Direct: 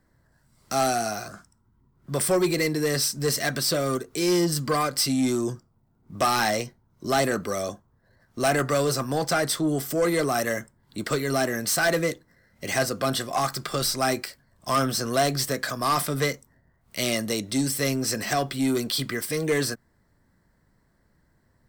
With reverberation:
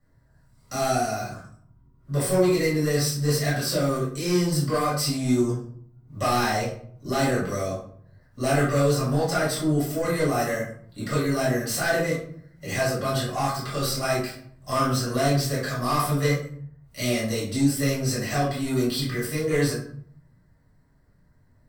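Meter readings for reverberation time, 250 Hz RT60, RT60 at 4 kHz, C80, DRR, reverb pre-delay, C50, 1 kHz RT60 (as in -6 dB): 0.60 s, 0.90 s, 0.35 s, 8.0 dB, -9.5 dB, 4 ms, 3.5 dB, 0.60 s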